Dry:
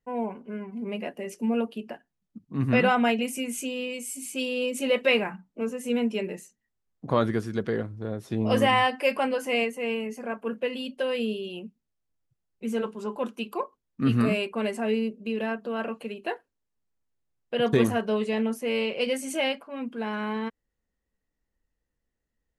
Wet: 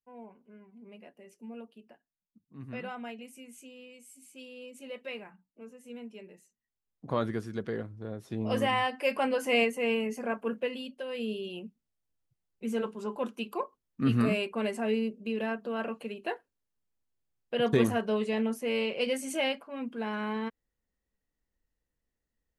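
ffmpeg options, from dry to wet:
ffmpeg -i in.wav -af "volume=8.5dB,afade=type=in:start_time=6.36:duration=0.74:silence=0.266073,afade=type=in:start_time=8.92:duration=0.68:silence=0.446684,afade=type=out:start_time=10.27:duration=0.78:silence=0.266073,afade=type=in:start_time=11.05:duration=0.35:silence=0.398107" out.wav

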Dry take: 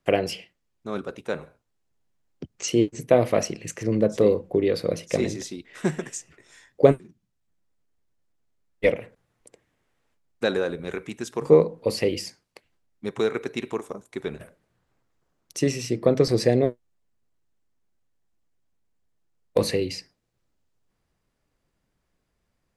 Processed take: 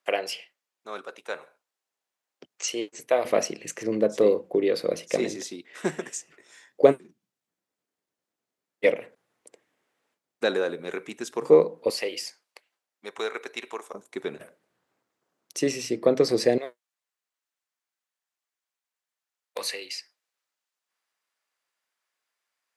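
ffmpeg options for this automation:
ffmpeg -i in.wav -af "asetnsamples=nb_out_samples=441:pad=0,asendcmd='3.25 highpass f 280;11.9 highpass f 650;13.94 highpass f 260;16.58 highpass f 1100',highpass=660" out.wav

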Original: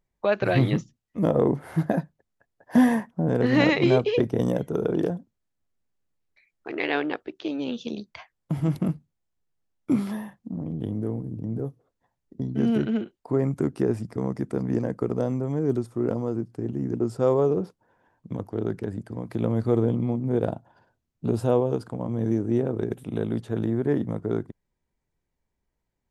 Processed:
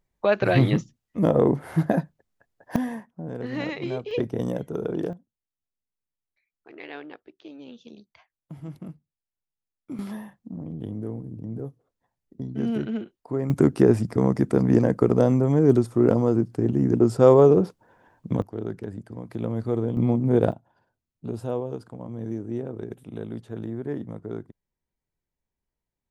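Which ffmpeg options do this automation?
ffmpeg -i in.wav -af "asetnsamples=nb_out_samples=441:pad=0,asendcmd='2.76 volume volume -10.5dB;4.11 volume volume -3.5dB;5.13 volume volume -13.5dB;9.99 volume volume -3.5dB;13.5 volume volume 7dB;18.42 volume volume -3.5dB;19.97 volume volume 4.5dB;20.52 volume volume -7dB',volume=2dB" out.wav

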